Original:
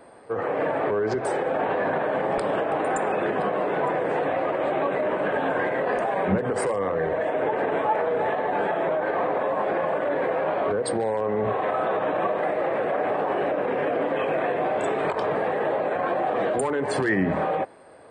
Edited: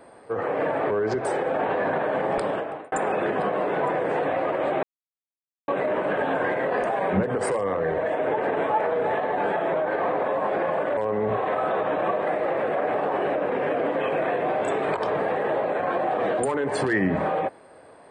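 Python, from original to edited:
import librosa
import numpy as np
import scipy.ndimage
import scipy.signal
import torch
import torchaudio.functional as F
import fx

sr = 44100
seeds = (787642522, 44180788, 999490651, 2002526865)

y = fx.edit(x, sr, fx.fade_out_span(start_s=2.43, length_s=0.49),
    fx.insert_silence(at_s=4.83, length_s=0.85),
    fx.cut(start_s=10.12, length_s=1.01), tone=tone)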